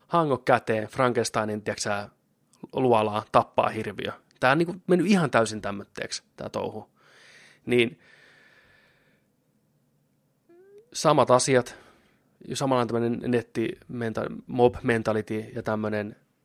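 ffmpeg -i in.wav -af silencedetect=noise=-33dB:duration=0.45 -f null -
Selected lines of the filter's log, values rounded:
silence_start: 2.05
silence_end: 2.64 | silence_duration: 0.58
silence_start: 6.79
silence_end: 7.67 | silence_duration: 0.88
silence_start: 7.89
silence_end: 10.95 | silence_duration: 3.07
silence_start: 11.71
silence_end: 12.48 | silence_duration: 0.78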